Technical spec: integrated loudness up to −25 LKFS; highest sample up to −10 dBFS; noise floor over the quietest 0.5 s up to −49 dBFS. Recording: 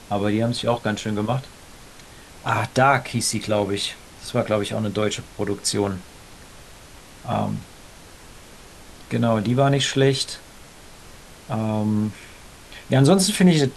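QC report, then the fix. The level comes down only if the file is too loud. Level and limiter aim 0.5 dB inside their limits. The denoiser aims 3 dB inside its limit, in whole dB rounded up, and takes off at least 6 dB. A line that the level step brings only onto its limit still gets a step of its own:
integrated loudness −22.0 LKFS: out of spec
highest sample −3.5 dBFS: out of spec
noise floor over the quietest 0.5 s −44 dBFS: out of spec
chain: broadband denoise 6 dB, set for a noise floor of −44 dBFS
level −3.5 dB
brickwall limiter −10.5 dBFS

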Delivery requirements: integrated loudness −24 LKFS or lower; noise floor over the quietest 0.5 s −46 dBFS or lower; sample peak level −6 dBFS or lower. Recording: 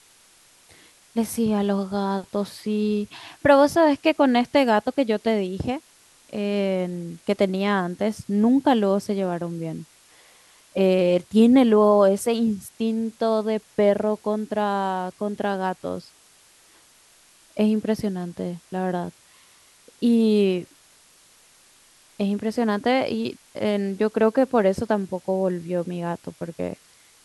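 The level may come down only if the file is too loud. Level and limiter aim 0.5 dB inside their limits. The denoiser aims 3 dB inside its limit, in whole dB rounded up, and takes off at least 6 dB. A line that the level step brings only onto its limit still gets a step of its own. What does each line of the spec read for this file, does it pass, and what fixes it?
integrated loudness −22.5 LKFS: out of spec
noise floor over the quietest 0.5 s −55 dBFS: in spec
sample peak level −5.5 dBFS: out of spec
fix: level −2 dB

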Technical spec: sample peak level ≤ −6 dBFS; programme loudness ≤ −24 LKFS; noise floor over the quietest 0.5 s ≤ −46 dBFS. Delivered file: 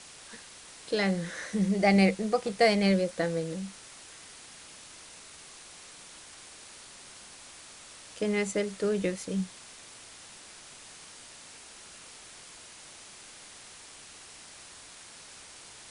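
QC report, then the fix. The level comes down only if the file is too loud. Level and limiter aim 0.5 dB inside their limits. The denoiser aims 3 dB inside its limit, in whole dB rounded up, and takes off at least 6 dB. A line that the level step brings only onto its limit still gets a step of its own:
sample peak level −10.0 dBFS: in spec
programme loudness −28.0 LKFS: in spec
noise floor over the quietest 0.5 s −49 dBFS: in spec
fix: no processing needed

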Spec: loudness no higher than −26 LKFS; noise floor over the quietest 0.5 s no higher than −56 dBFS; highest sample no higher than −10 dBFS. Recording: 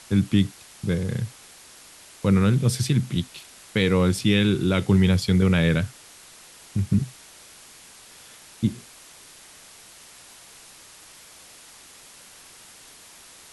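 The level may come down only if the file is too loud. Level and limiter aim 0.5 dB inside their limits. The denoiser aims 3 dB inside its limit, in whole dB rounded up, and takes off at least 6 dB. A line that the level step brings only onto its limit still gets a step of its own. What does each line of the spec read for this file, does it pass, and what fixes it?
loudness −23.0 LKFS: out of spec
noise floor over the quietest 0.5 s −48 dBFS: out of spec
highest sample −8.0 dBFS: out of spec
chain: broadband denoise 8 dB, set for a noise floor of −48 dBFS
level −3.5 dB

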